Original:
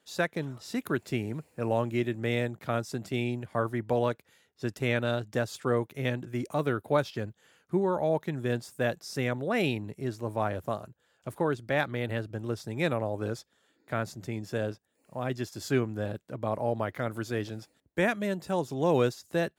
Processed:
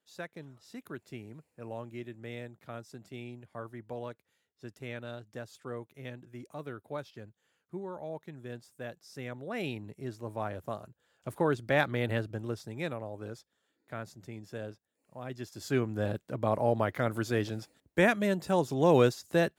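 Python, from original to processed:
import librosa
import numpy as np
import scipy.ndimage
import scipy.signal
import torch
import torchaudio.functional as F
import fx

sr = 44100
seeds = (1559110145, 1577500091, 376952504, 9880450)

y = fx.gain(x, sr, db=fx.line((8.98, -13.0), (9.88, -6.0), (10.61, -6.0), (11.57, 1.0), (12.17, 1.0), (12.99, -9.0), (15.26, -9.0), (16.09, 2.0)))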